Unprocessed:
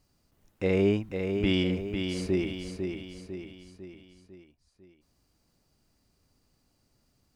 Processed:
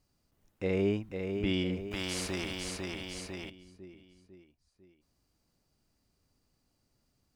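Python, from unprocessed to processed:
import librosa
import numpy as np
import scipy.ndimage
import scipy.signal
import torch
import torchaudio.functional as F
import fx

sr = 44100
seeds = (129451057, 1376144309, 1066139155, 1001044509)

y = fx.spectral_comp(x, sr, ratio=2.0, at=(1.91, 3.5))
y = y * 10.0 ** (-5.0 / 20.0)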